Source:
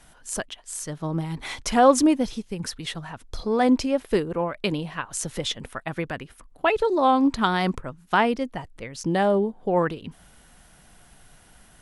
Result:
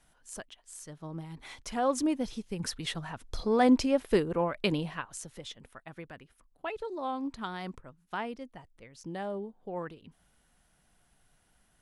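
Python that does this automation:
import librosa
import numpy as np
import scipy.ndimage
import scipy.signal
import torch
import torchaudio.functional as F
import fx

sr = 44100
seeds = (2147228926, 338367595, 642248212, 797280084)

y = fx.gain(x, sr, db=fx.line((1.81, -13.0), (2.69, -3.0), (4.87, -3.0), (5.3, -15.5)))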